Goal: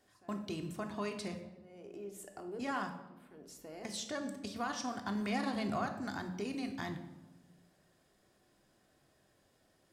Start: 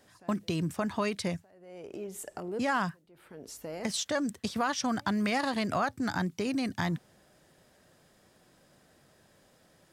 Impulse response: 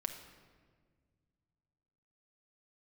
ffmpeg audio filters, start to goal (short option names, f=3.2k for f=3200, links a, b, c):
-filter_complex "[0:a]asettb=1/sr,asplit=3[a][b][c];[a]atrim=end=5.154[d];[b]atrim=start=5.15:end=5.83,asetpts=PTS-STARTPTS,afade=t=in:d=0.004:c=qsin,afade=t=out:st=0.676:d=0.004:c=qsin,lowshelf=f=360:g=6[e];[c]atrim=start=5.826[f];[d][e]acrossfade=d=0.004:c1=hsin:c2=qsin[g];[g][f]acrossfade=d=0.004:c1=qsin:c2=hsin[h];[1:a]atrim=start_sample=2205,asetrate=83790,aresample=44100[i];[h][i]afir=irnorm=-1:irlink=0,volume=-2.5dB"